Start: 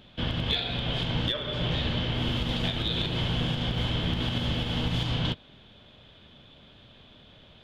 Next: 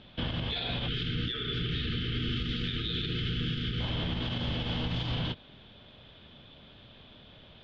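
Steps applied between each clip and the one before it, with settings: time-frequency box 0.88–3.80 s, 490–1200 Hz -28 dB; low-pass 5.2 kHz 24 dB/octave; peak limiter -23.5 dBFS, peak gain reduction 9.5 dB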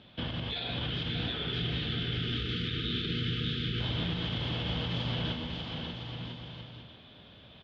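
high-pass 65 Hz; on a send: bouncing-ball echo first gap 590 ms, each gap 0.7×, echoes 5; on the sum: trim -2 dB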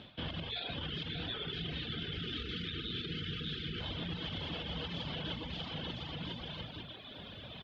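reverb removal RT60 1.3 s; hum notches 60/120/180/240 Hz; reverse; compression 4:1, threshold -48 dBFS, peak gain reduction 13 dB; reverse; trim +9 dB

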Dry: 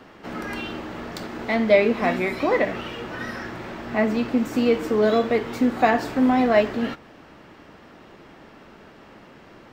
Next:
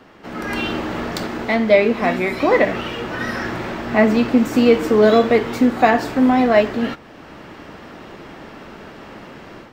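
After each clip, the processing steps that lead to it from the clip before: level rider gain up to 9.5 dB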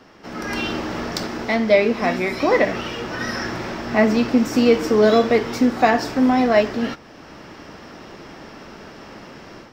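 peaking EQ 5.4 kHz +11 dB 0.37 oct; trim -2 dB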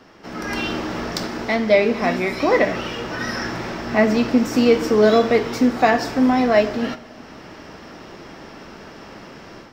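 reverberation, pre-delay 3 ms, DRR 13.5 dB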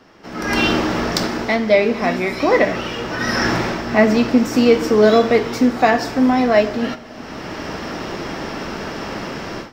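level rider gain up to 13 dB; trim -1 dB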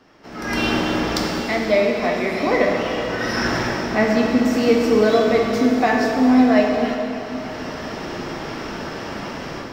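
plate-style reverb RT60 3.6 s, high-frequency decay 0.85×, DRR 0.5 dB; trim -5 dB

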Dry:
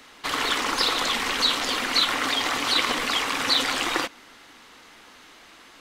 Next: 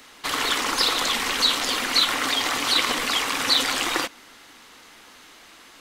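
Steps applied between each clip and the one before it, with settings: treble shelf 6.3 kHz +7 dB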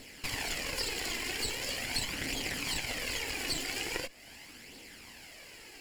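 comb filter that takes the minimum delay 0.4 ms; compression 2.5:1, threshold -37 dBFS, peak gain reduction 13.5 dB; flange 0.42 Hz, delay 0.2 ms, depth 2.8 ms, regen +36%; trim +3.5 dB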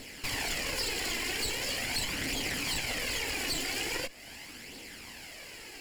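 saturation -31 dBFS, distortion -13 dB; trim +4.5 dB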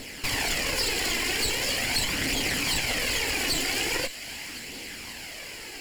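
feedback echo behind a high-pass 530 ms, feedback 64%, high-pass 1.7 kHz, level -14 dB; trim +6 dB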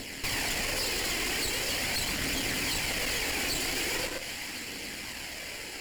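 on a send at -4.5 dB: reverberation RT60 0.40 s, pre-delay 102 ms; on the sum: valve stage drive 32 dB, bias 0.8; trim +3.5 dB

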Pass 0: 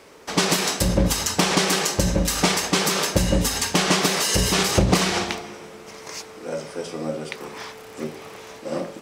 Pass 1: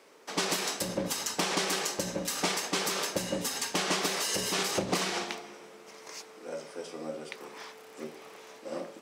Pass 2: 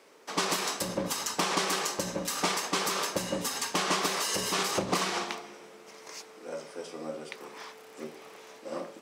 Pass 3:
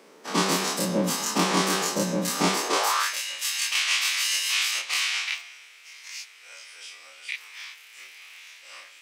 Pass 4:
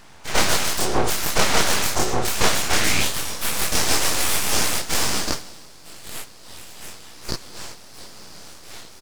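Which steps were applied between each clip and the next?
high-pass 240 Hz 12 dB/octave; trim -9 dB
dynamic bell 1.1 kHz, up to +6 dB, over -50 dBFS, Q 2.7
every event in the spectrogram widened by 60 ms; high-pass sweep 190 Hz -> 2.4 kHz, 2.49–3.18 s
resampled via 22.05 kHz; full-wave rectifier; trim +7.5 dB

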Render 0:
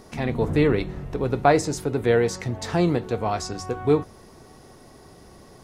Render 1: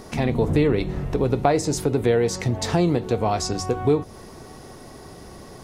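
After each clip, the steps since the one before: compression 2.5:1, threshold -24 dBFS, peak gain reduction 8.5 dB; dynamic bell 1.5 kHz, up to -5 dB, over -46 dBFS, Q 1.3; trim +6.5 dB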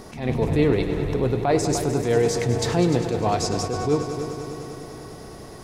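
multi-head delay 100 ms, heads all three, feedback 70%, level -15 dB; attacks held to a fixed rise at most 110 dB/s

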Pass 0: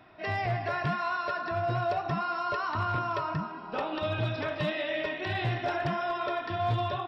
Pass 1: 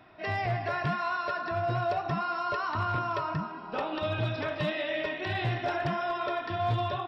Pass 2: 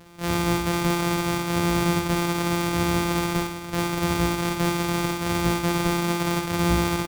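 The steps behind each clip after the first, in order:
no audible change
sorted samples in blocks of 256 samples; on a send: early reflections 49 ms -7 dB, 63 ms -8.5 dB; on the sum: trim +7 dB

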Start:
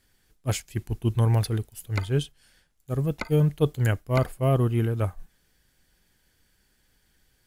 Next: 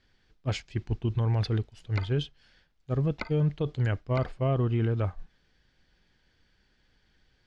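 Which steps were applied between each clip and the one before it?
low-pass 5 kHz 24 dB/octave; peak limiter -18 dBFS, peak gain reduction 9.5 dB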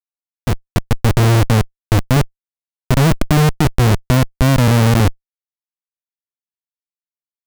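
peaking EQ 200 Hz +11.5 dB 2.7 oct; Schmitt trigger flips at -18.5 dBFS; level rider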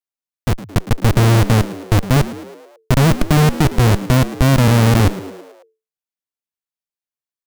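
frequency-shifting echo 109 ms, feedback 57%, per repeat +88 Hz, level -16 dB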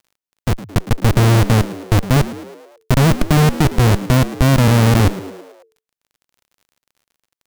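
crackle 39 per s -42 dBFS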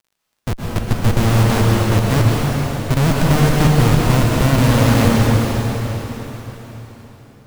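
plate-style reverb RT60 4.3 s, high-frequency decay 0.95×, pre-delay 110 ms, DRR -3.5 dB; trim -4.5 dB

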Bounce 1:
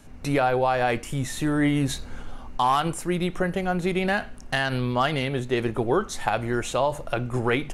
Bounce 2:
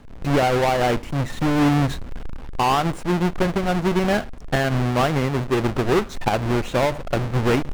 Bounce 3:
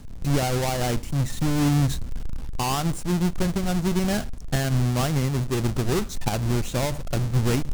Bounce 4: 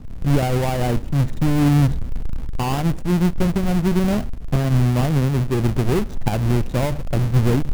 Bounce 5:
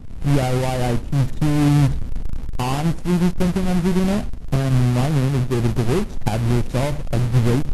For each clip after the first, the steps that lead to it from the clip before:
square wave that keeps the level; low-pass 2.4 kHz 6 dB/octave
tone controls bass +10 dB, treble +15 dB; reverse; upward compressor, threshold -15 dBFS; reverse; trim -8.5 dB
median filter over 41 samples; trim +5.5 dB
Vorbis 32 kbps 32 kHz

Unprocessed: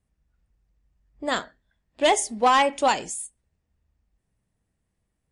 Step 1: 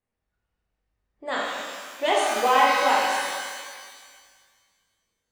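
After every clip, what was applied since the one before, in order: tone controls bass -13 dB, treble -9 dB; pitch-shifted reverb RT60 1.8 s, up +12 st, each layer -8 dB, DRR -4.5 dB; trim -4.5 dB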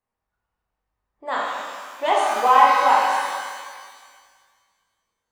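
peaking EQ 990 Hz +11 dB 1.1 oct; trim -3.5 dB

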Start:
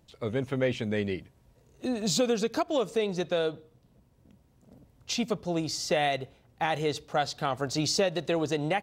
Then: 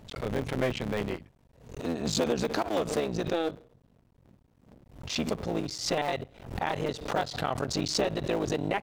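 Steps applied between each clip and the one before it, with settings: cycle switcher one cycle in 3, muted; treble shelf 4.6 kHz -7.5 dB; swell ahead of each attack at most 94 dB/s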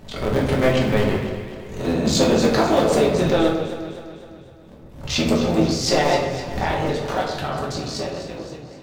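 fade out at the end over 2.86 s; echo whose repeats swap between lows and highs 127 ms, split 1.7 kHz, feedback 72%, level -8 dB; simulated room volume 120 m³, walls mixed, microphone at 1.1 m; trim +6 dB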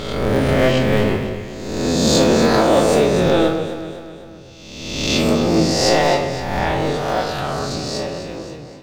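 reverse spectral sustain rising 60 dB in 1.29 s

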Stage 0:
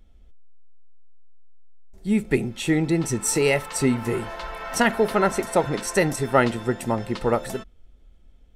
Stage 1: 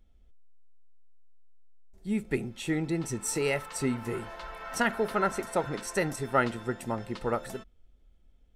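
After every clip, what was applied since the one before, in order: dynamic bell 1.4 kHz, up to +5 dB, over -39 dBFS, Q 2.8; trim -8.5 dB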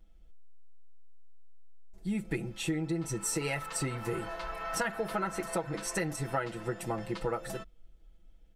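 comb 6.1 ms, depth 86%; compression 6:1, threshold -29 dBFS, peak gain reduction 12 dB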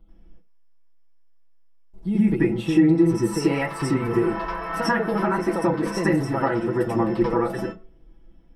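reverberation RT60 0.35 s, pre-delay 86 ms, DRR -7 dB; trim -5 dB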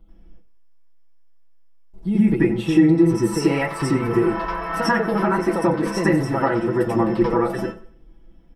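feedback delay 92 ms, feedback 37%, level -18.5 dB; trim +2.5 dB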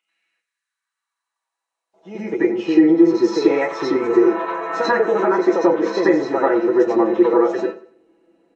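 knee-point frequency compression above 2.2 kHz 1.5:1; high-pass sweep 2.2 kHz -> 400 Hz, 0.25–2.60 s

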